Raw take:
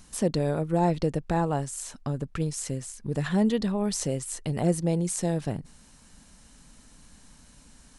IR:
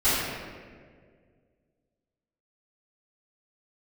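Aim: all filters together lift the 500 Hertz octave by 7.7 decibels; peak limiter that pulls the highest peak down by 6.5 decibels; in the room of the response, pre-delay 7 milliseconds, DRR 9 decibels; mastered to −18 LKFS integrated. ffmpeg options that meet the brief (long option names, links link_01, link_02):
-filter_complex "[0:a]equalizer=frequency=500:width_type=o:gain=9,alimiter=limit=-14.5dB:level=0:latency=1,asplit=2[link_01][link_02];[1:a]atrim=start_sample=2205,adelay=7[link_03];[link_02][link_03]afir=irnorm=-1:irlink=0,volume=-25.5dB[link_04];[link_01][link_04]amix=inputs=2:normalize=0,volume=8dB"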